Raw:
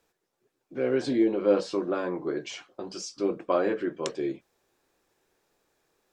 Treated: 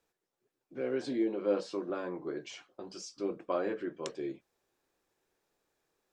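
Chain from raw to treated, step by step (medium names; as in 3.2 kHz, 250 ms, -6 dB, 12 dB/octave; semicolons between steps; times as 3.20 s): 0.81–1.90 s: high-pass 140 Hz; trim -7.5 dB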